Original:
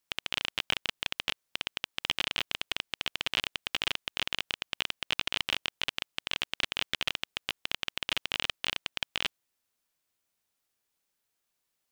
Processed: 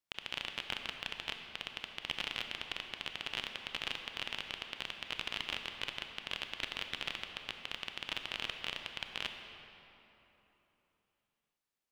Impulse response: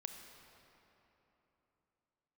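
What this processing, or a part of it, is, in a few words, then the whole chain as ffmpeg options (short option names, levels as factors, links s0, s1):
swimming-pool hall: -filter_complex "[1:a]atrim=start_sample=2205[s0];[0:a][s0]afir=irnorm=-1:irlink=0,highshelf=f=5300:g=-6.5,volume=0.75"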